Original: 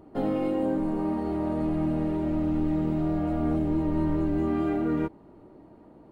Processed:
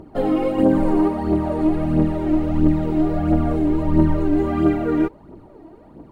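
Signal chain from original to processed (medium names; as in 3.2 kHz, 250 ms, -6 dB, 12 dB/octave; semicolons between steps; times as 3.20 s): phaser 1.5 Hz, delay 3.2 ms, feedback 56%; 0.58–1.08 s: level flattener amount 50%; trim +6 dB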